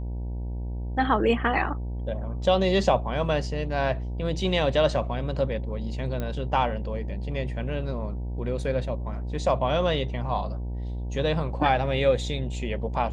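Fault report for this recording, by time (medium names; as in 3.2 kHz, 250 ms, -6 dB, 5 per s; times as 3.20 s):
buzz 60 Hz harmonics 16 -31 dBFS
6.20 s: pop -18 dBFS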